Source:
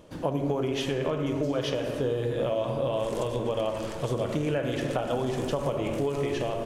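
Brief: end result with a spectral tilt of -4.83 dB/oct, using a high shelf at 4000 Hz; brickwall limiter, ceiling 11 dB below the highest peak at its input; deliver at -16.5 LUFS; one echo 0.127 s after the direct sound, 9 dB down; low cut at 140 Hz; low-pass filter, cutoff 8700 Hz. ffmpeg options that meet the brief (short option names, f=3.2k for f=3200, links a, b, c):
-af "highpass=140,lowpass=8.7k,highshelf=f=4k:g=5.5,alimiter=limit=-24dB:level=0:latency=1,aecho=1:1:127:0.355,volume=16dB"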